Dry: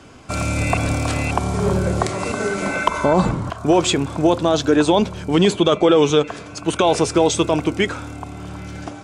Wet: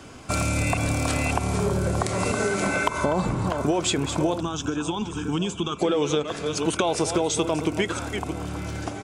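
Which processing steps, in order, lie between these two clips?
reverse delay 0.333 s, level -12.5 dB; high shelf 9300 Hz +9 dB; compressor, threshold -20 dBFS, peak gain reduction 10 dB; 4.4–5.79 fixed phaser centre 2900 Hz, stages 8; outdoor echo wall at 200 m, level -17 dB

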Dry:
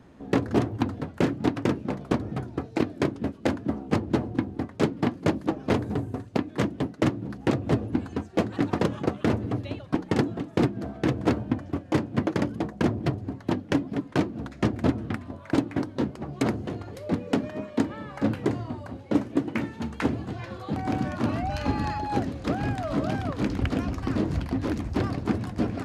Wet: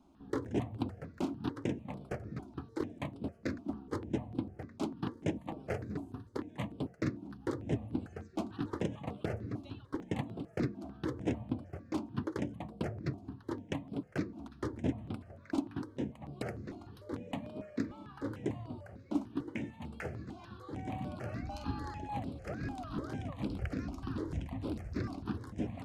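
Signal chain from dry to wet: de-hum 230.2 Hz, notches 5; step phaser 6.7 Hz 480–6400 Hz; gain -9 dB

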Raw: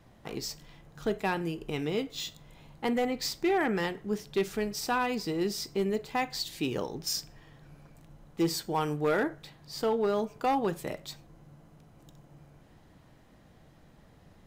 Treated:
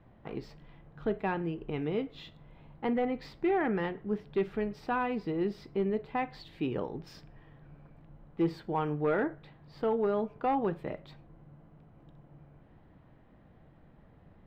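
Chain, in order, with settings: air absorption 480 m

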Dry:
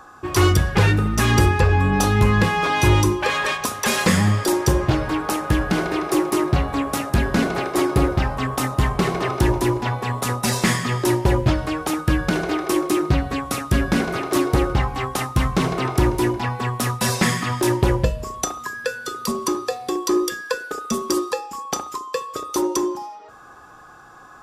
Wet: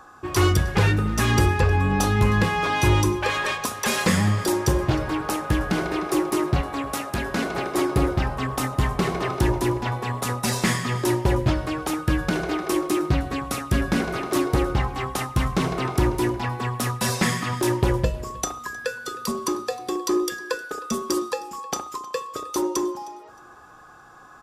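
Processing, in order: 6.61–7.55 low shelf 220 Hz -9.5 dB; on a send: feedback echo 0.311 s, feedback 28%, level -21 dB; on the sum: gain -3 dB

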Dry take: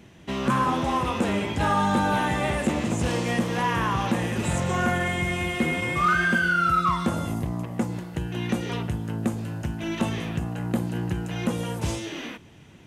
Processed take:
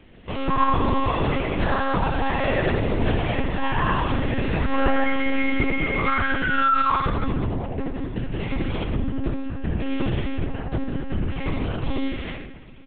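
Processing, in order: on a send: feedback echo 78 ms, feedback 38%, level -5 dB; on the sum: shoebox room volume 3700 m³, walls furnished, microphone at 3.1 m; monotone LPC vocoder at 8 kHz 270 Hz; gain -1.5 dB

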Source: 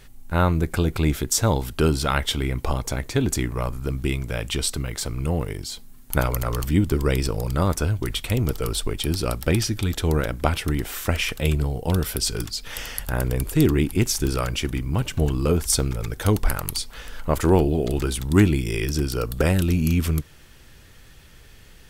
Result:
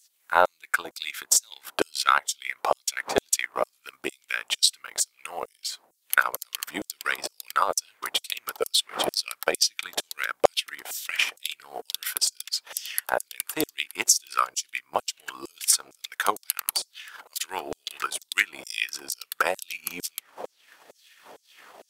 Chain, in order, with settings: wind noise 300 Hz -33 dBFS; LFO high-pass saw down 2.2 Hz 560–7400 Hz; transient shaper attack +8 dB, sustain -11 dB; gain -4.5 dB

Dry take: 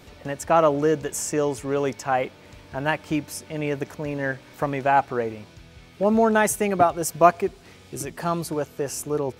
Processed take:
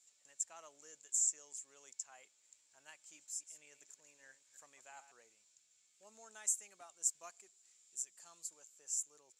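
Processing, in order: 3.01–5.12 reverse delay 0.142 s, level -11 dB; band-pass 7300 Hz, Q 12; gain +2.5 dB

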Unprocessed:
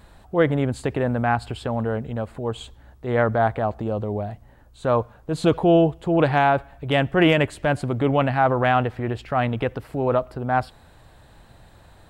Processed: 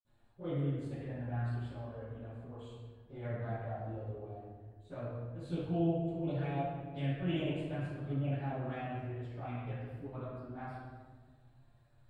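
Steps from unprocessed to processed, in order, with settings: bin magnitudes rounded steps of 15 dB; envelope flanger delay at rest 9.4 ms, full sweep at -14 dBFS; reverb RT60 1.6 s, pre-delay 49 ms, DRR -60 dB; gain -9 dB

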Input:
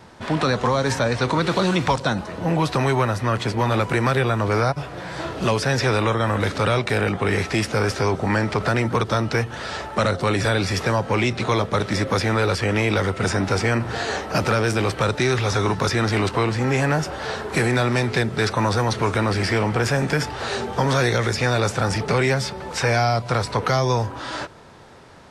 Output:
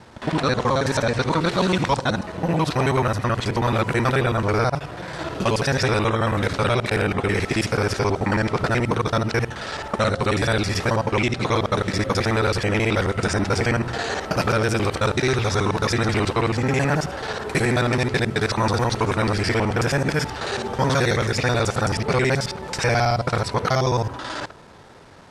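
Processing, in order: local time reversal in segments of 54 ms

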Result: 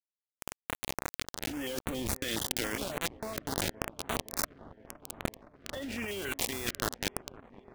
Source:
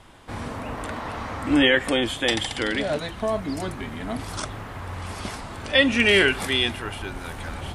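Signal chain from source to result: ending faded out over 0.61 s; bit-crush 4-bit; 1.81–2.24 low shelf 290 Hz +11.5 dB; limiter -16 dBFS, peak gain reduction 11 dB; negative-ratio compressor -31 dBFS, ratio -1; 5.18–6.08 high shelf 5000 Hz -9.5 dB; dark delay 0.516 s, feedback 78%, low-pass 1100 Hz, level -17.5 dB; stepped notch 7.2 Hz 880–5100 Hz; gain -2 dB

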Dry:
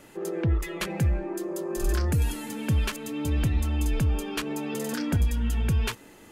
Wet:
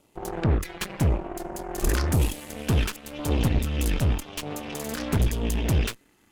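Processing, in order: 3.59–4.43 bell 390 Hz -5 dB 1.4 oct; LFO notch saw down 0.94 Hz 420–1800 Hz; added harmonics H 2 -7 dB, 5 -26 dB, 7 -17 dB, 8 -14 dB, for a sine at -15.5 dBFS

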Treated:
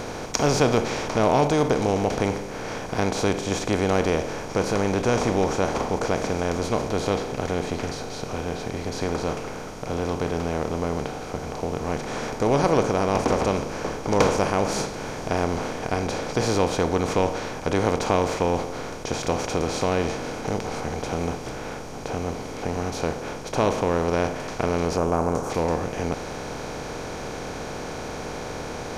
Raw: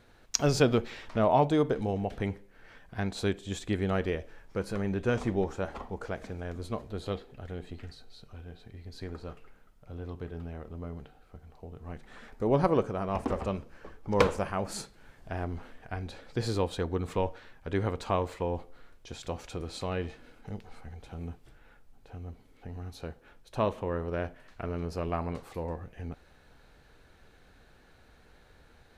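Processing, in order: per-bin compression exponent 0.4; 24.97–25.5 band shelf 3000 Hz -10.5 dB

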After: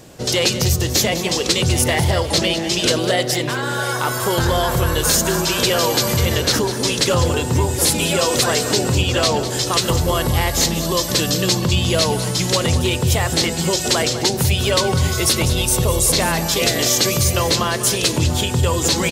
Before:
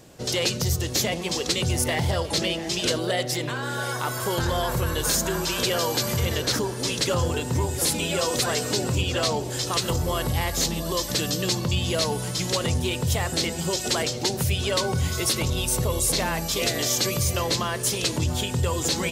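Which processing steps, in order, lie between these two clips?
echo 0.2 s -12 dB; gain +7 dB

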